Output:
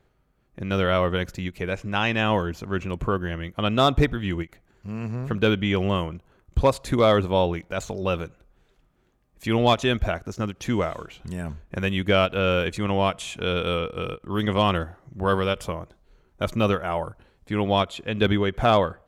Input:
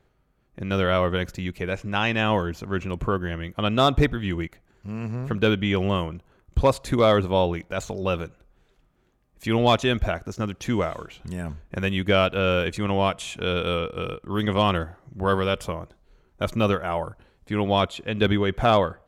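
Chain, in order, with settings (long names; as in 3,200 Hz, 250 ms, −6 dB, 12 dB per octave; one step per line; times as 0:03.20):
every ending faded ahead of time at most 460 dB per second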